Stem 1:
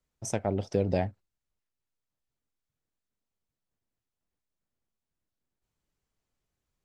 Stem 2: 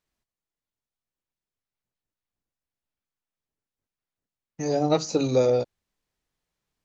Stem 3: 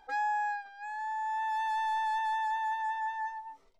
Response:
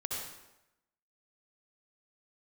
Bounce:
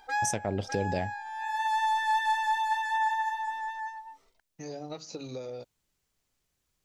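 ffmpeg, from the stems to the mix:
-filter_complex "[0:a]volume=2dB,asplit=2[a][b];[1:a]lowpass=5.2k,acompressor=threshold=-25dB:ratio=6,volume=-11.5dB[c];[2:a]volume=1.5dB,asplit=2[d][e];[e]volume=-4dB[f];[b]apad=whole_len=167331[g];[d][g]sidechaincompress=threshold=-36dB:ratio=8:attack=39:release=615[h];[f]aecho=0:1:604:1[i];[a][c][h][i]amix=inputs=4:normalize=0,highshelf=f=2.2k:g=8,alimiter=limit=-17.5dB:level=0:latency=1:release=279"

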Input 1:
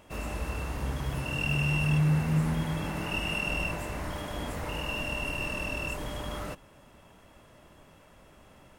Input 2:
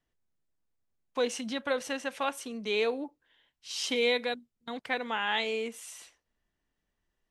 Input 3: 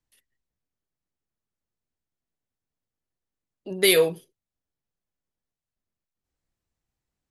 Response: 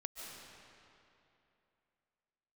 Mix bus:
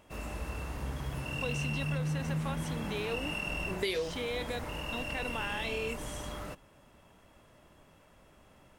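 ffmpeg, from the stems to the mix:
-filter_complex "[0:a]volume=-4.5dB[a];[1:a]deesser=0.85,alimiter=limit=-23.5dB:level=0:latency=1,adelay=250,volume=-2.5dB[b];[2:a]lowpass=5.8k,volume=-6dB[c];[a][b][c]amix=inputs=3:normalize=0,acompressor=threshold=-29dB:ratio=12"

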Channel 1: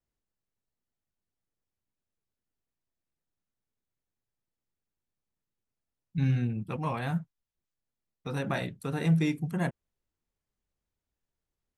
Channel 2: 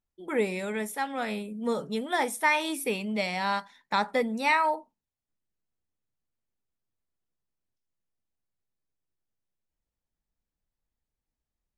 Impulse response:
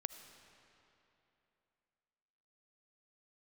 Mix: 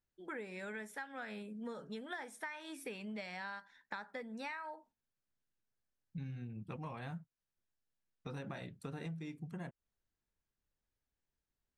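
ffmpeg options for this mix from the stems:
-filter_complex "[0:a]volume=2dB[a];[1:a]equalizer=f=1.6k:t=o:w=0.39:g=11.5,volume=-8.5dB,asplit=2[b][c];[c]apad=whole_len=519206[d];[a][d]sidechaingate=range=-7dB:threshold=-56dB:ratio=16:detection=peak[e];[e][b]amix=inputs=2:normalize=0,lowpass=8k,acompressor=threshold=-41dB:ratio=12"

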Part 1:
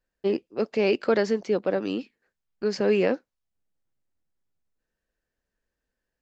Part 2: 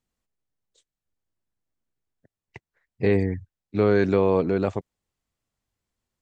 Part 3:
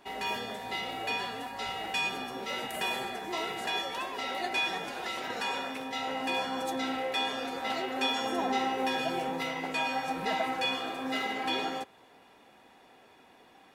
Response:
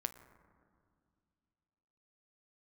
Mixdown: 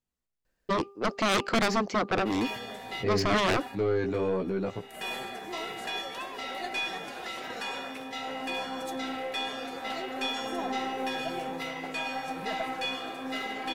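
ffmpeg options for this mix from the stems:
-filter_complex "[0:a]aeval=exprs='0.316*(cos(1*acos(clip(val(0)/0.316,-1,1)))-cos(1*PI/2))+0.0501*(cos(3*acos(clip(val(0)/0.316,-1,1)))-cos(3*PI/2))+0.112*(cos(7*acos(clip(val(0)/0.316,-1,1)))-cos(7*PI/2))':c=same,adelay=450,volume=0dB[a];[1:a]flanger=delay=15.5:depth=2.3:speed=1.1,volume=-3.5dB,asplit=2[b][c];[2:a]bandreject=f=920:w=12,adelay=2200,volume=-1dB[d];[c]apad=whole_len=703085[e];[d][e]sidechaincompress=threshold=-42dB:ratio=12:attack=16:release=308[f];[a][b][f]amix=inputs=3:normalize=0,bandreject=f=398.9:t=h:w=4,bandreject=f=797.8:t=h:w=4,bandreject=f=1.1967k:t=h:w=4,aeval=exprs='(tanh(7.94*val(0)+0.25)-tanh(0.25))/7.94':c=same"

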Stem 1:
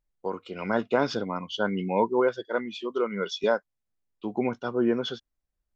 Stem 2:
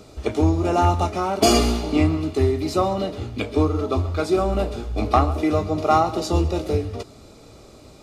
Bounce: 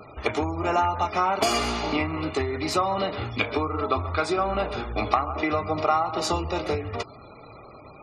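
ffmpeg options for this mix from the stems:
-filter_complex "[0:a]volume=-15dB[a];[1:a]equalizer=f=125:t=o:w=1:g=7,equalizer=f=1k:t=o:w=1:g=7,equalizer=f=2k:t=o:w=1:g=7,acompressor=threshold=-19dB:ratio=12,volume=3dB[b];[a][b]amix=inputs=2:normalize=0,afftfilt=real='re*gte(hypot(re,im),0.01)':imag='im*gte(hypot(re,im),0.01)':win_size=1024:overlap=0.75,lowshelf=f=420:g=-10.5"

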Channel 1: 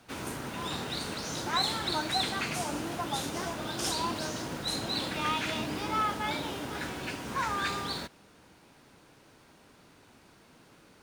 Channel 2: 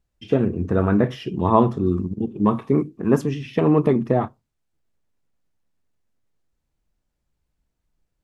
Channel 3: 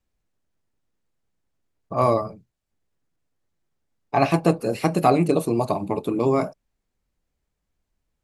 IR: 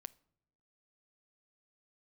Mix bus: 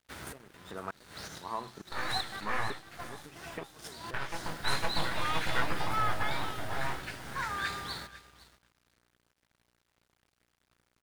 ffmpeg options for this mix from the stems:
-filter_complex "[0:a]equalizer=f=1k:t=o:w=0.67:g=-9,equalizer=f=2.5k:t=o:w=0.67:g=-8,equalizer=f=6.3k:t=o:w=0.67:g=-4,aeval=exprs='val(0)+0.002*(sin(2*PI*60*n/s)+sin(2*PI*2*60*n/s)/2+sin(2*PI*3*60*n/s)/3+sin(2*PI*4*60*n/s)/4+sin(2*PI*5*60*n/s)/5)':c=same,volume=-1dB,asplit=2[a][b];[b]volume=-14.5dB[c];[1:a]highpass=210,aeval=exprs='val(0)*pow(10,-26*if(lt(mod(-1.1*n/s,1),2*abs(-1.1)/1000),1-mod(-1.1*n/s,1)/(2*abs(-1.1)/1000),(mod(-1.1*n/s,1)-2*abs(-1.1)/1000)/(1-2*abs(-1.1)/1000))/20)':c=same,volume=-9.5dB,asplit=2[d][e];[2:a]aeval=exprs='abs(val(0))':c=same,flanger=delay=17:depth=5:speed=0.37,volume=-5.5dB,asplit=2[f][g];[g]volume=-5dB[h];[e]apad=whole_len=486030[i];[a][i]sidechaincompress=threshold=-53dB:ratio=8:attack=9.5:release=182[j];[d][f]amix=inputs=2:normalize=0,acompressor=threshold=-32dB:ratio=6,volume=0dB[k];[c][h]amix=inputs=2:normalize=0,aecho=0:1:504|1008|1512:1|0.18|0.0324[l];[j][k][l]amix=inputs=3:normalize=0,equalizer=f=250:t=o:w=1:g=-8,equalizer=f=500:t=o:w=1:g=-4,equalizer=f=1k:t=o:w=1:g=4,equalizer=f=2k:t=o:w=1:g=6,aeval=exprs='sgn(val(0))*max(abs(val(0))-0.00251,0)':c=same"

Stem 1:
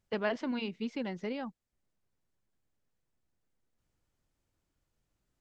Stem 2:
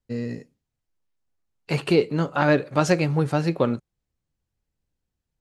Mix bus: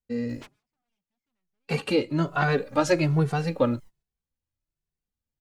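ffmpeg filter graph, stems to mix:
-filter_complex "[0:a]acompressor=mode=upward:threshold=-37dB:ratio=2.5,aphaser=in_gain=1:out_gain=1:delay=1.3:decay=0.65:speed=0.39:type=triangular,aeval=exprs='0.0168*(abs(mod(val(0)/0.0168+3,4)-2)-1)':c=same,adelay=300,volume=-4dB[a];[1:a]asplit=2[b][c];[c]adelay=2.2,afreqshift=1.2[d];[b][d]amix=inputs=2:normalize=1,volume=1dB,asplit=2[e][f];[f]apad=whole_len=251735[g];[a][g]sidechaingate=range=-33dB:threshold=-42dB:ratio=16:detection=peak[h];[h][e]amix=inputs=2:normalize=0,agate=range=-8dB:threshold=-59dB:ratio=16:detection=peak"

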